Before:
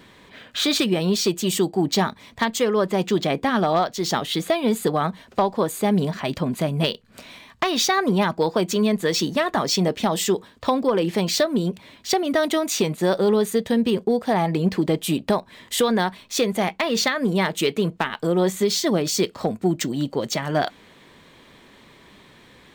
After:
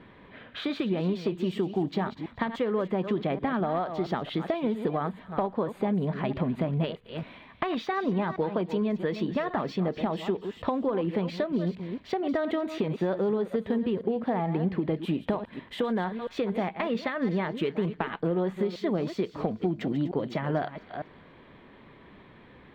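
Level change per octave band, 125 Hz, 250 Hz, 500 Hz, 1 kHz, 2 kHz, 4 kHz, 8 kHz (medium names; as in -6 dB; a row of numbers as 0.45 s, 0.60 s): -5.0 dB, -6.0 dB, -7.0 dB, -8.0 dB, -10.0 dB, -17.0 dB, under -30 dB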